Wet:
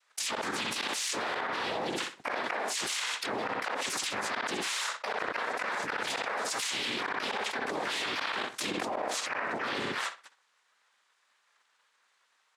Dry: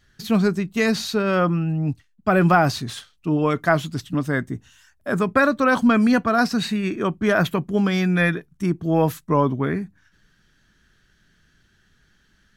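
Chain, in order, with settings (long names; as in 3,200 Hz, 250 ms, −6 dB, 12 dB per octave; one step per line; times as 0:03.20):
noise gate −53 dBFS, range −39 dB
high-pass filter 590 Hz 24 dB per octave
cochlear-implant simulation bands 6
pitch-shifted copies added −12 semitones −12 dB, +4 semitones −15 dB, +5 semitones −7 dB
gate with flip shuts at −14 dBFS, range −25 dB
feedback echo with a low-pass in the loop 62 ms, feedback 25%, low-pass 4,900 Hz, level −13 dB
soft clipping −15.5 dBFS, distortion −22 dB
envelope flattener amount 100%
level −8.5 dB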